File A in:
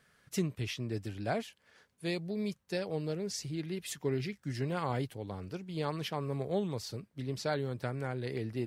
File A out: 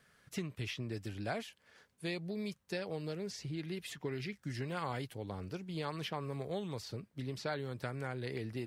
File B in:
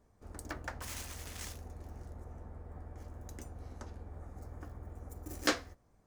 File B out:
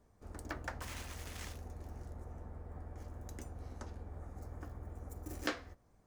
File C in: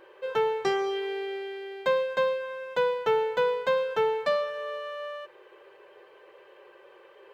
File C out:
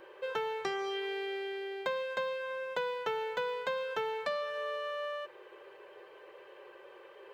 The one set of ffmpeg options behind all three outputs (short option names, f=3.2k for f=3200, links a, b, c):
-filter_complex "[0:a]acrossover=split=1000|3900[a][b][c];[a]acompressor=threshold=-37dB:ratio=4[d];[b]acompressor=threshold=-38dB:ratio=4[e];[c]acompressor=threshold=-53dB:ratio=4[f];[d][e][f]amix=inputs=3:normalize=0"